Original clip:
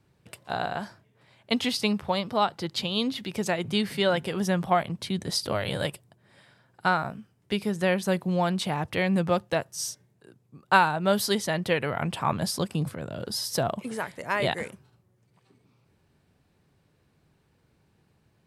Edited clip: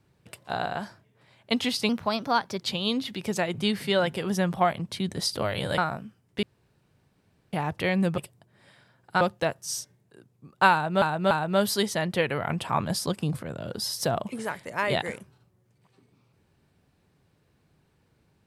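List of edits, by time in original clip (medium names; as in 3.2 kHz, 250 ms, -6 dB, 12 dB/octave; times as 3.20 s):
1.89–2.72 s: speed 114%
5.88–6.91 s: move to 9.31 s
7.56–8.66 s: room tone
10.83–11.12 s: loop, 3 plays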